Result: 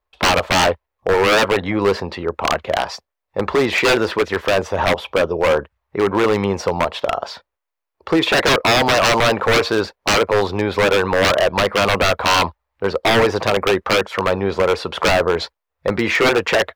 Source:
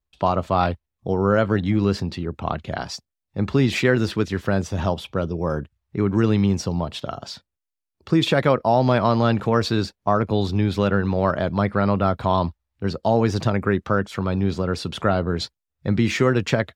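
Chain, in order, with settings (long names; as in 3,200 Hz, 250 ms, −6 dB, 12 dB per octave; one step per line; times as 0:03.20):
octave-band graphic EQ 125/250/500/1,000/2,000/8,000 Hz −10/−5/+11/+11/+6/−5 dB
wave folding −10.5 dBFS
level +2 dB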